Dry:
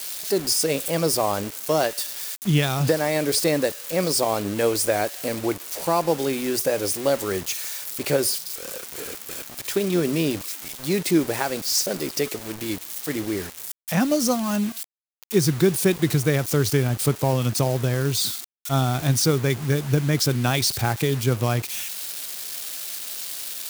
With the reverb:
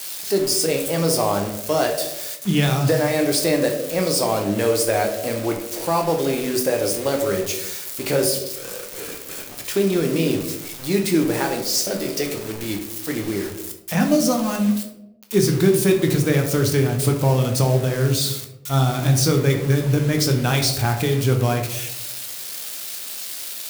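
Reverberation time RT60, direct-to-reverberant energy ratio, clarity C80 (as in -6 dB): 0.90 s, 2.5 dB, 10.5 dB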